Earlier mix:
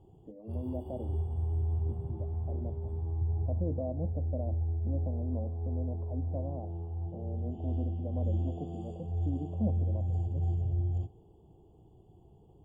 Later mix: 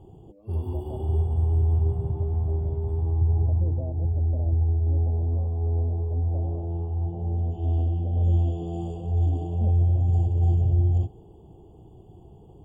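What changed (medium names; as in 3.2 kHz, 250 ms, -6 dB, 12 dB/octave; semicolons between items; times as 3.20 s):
background +10.5 dB; reverb: off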